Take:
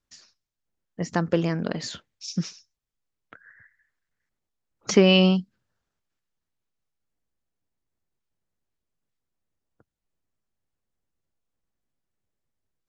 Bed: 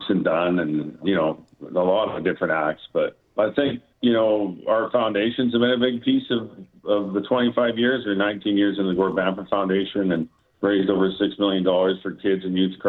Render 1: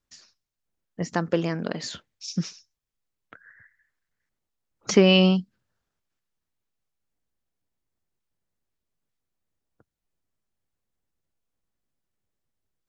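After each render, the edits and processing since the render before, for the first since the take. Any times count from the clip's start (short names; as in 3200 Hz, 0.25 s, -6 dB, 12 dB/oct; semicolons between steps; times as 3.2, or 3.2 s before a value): 1.08–1.91 low shelf 100 Hz -11.5 dB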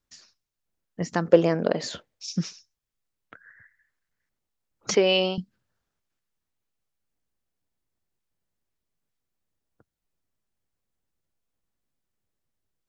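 1.25–2.26 bell 550 Hz +10 dB 1.3 oct; 4.95–5.38 speaker cabinet 430–5100 Hz, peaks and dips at 460 Hz +4 dB, 1200 Hz -9 dB, 1800 Hz -4 dB, 2700 Hz -3 dB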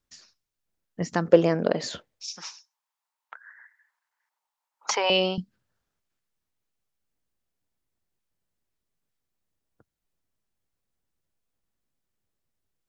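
2.34–5.1 resonant high-pass 910 Hz, resonance Q 5.7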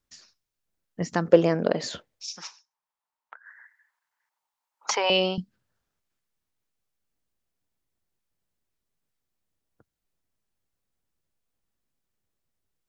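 2.47–3.46 high shelf 2200 Hz -9 dB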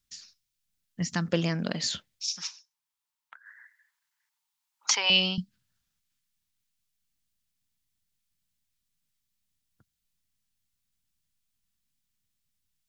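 EQ curve 200 Hz 0 dB, 450 Hz -15 dB, 3400 Hz +5 dB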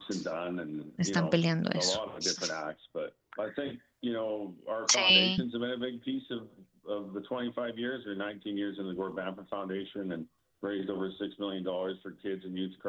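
add bed -15 dB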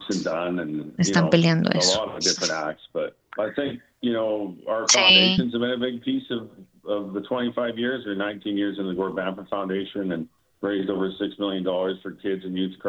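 gain +9.5 dB; limiter -3 dBFS, peak gain reduction 3 dB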